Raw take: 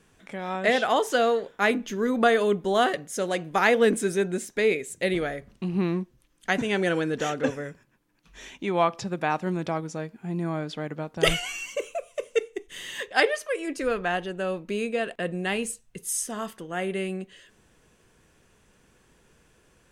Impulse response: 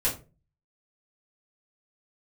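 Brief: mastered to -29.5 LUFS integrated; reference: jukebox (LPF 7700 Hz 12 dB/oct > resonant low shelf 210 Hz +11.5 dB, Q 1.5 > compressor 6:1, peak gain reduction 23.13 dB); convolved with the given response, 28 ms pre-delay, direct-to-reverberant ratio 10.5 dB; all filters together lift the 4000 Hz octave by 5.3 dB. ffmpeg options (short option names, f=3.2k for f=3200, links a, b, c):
-filter_complex "[0:a]equalizer=f=4k:t=o:g=7.5,asplit=2[a][b];[1:a]atrim=start_sample=2205,adelay=28[c];[b][c]afir=irnorm=-1:irlink=0,volume=-19.5dB[d];[a][d]amix=inputs=2:normalize=0,lowpass=7.7k,lowshelf=f=210:t=q:w=1.5:g=11.5,acompressor=threshold=-35dB:ratio=6,volume=8.5dB"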